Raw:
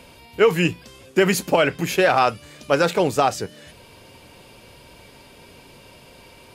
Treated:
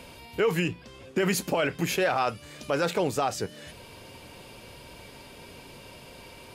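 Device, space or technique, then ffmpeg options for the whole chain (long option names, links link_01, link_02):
stacked limiters: -filter_complex "[0:a]alimiter=limit=-10.5dB:level=0:latency=1:release=23,alimiter=limit=-16dB:level=0:latency=1:release=367,asettb=1/sr,asplit=3[link_01][link_02][link_03];[link_01]atrim=end=0.684[link_04];[link_02]atrim=start=0.68:end=1.18,asetpts=PTS-STARTPTS,afade=type=in:duration=0.004:curve=qsin,afade=type=out:start_time=0.496:duration=0.004:curve=qsin,aemphasis=mode=reproduction:type=50kf[link_05];[link_03]atrim=start=1.176[link_06];[link_04][link_05]acrossfade=duration=0.004:curve1=hsin:curve2=qsin[link_07];[link_07][link_06]acrossfade=duration=0.004:curve1=qsin:curve2=hsin"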